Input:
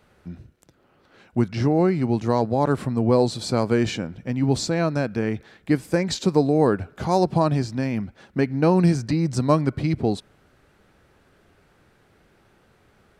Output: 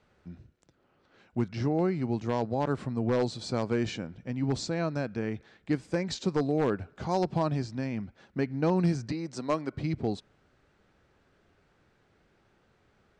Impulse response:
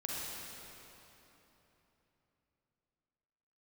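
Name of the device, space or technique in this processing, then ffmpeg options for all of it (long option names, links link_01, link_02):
synthesiser wavefolder: -filter_complex "[0:a]asettb=1/sr,asplit=3[link_01][link_02][link_03];[link_01]atrim=end=9.124[link_04];[link_02]atrim=start=9.12:end=9.73,asetpts=PTS-STARTPTS,afade=type=in:duration=0.004:curve=qsin,afade=type=out:start_time=0.606:duration=0.004:curve=qsin,highpass=280[link_05];[link_03]atrim=start=9.726[link_06];[link_04][link_05]acrossfade=duration=0.004:curve1=hsin:curve2=qsin[link_07];[link_07][link_06]acrossfade=duration=0.004:curve1=qsin:curve2=hsin,aeval=exprs='0.335*(abs(mod(val(0)/0.335+3,4)-2)-1)':channel_layout=same,lowpass=frequency=7600:width=0.5412,lowpass=frequency=7600:width=1.3066,volume=-8dB"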